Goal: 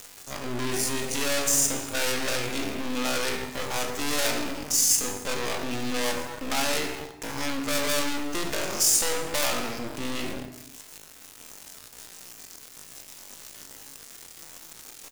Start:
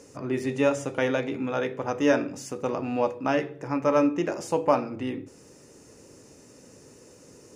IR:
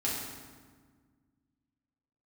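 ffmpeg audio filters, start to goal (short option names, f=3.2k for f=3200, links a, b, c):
-filter_complex "[0:a]acontrast=47,aeval=exprs='(tanh(28.2*val(0)+0.55)-tanh(0.55))/28.2':c=same,crystalizer=i=7:c=0,aeval=exprs='val(0)*gte(abs(val(0)),0.0316)':c=same,atempo=0.5,asplit=2[a][b];[b]adelay=33,volume=-12.5dB[c];[a][c]amix=inputs=2:normalize=0,asplit=2[d][e];[1:a]atrim=start_sample=2205,afade=t=out:st=0.34:d=0.01,atrim=end_sample=15435,adelay=44[f];[e][f]afir=irnorm=-1:irlink=0,volume=-15.5dB[g];[d][g]amix=inputs=2:normalize=0"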